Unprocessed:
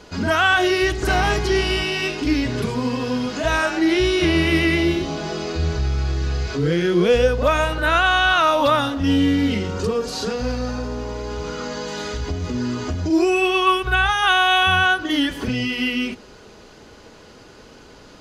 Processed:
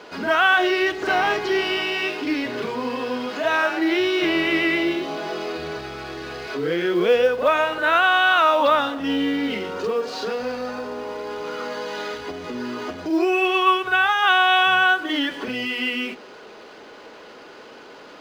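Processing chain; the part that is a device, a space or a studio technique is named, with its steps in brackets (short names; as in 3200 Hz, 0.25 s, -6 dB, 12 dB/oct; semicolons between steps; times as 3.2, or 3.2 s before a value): phone line with mismatched companding (BPF 360–3500 Hz; G.711 law mismatch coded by mu)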